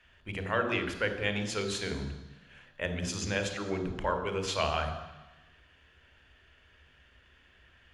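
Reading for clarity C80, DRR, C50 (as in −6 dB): 11.0 dB, 7.5 dB, 8.5 dB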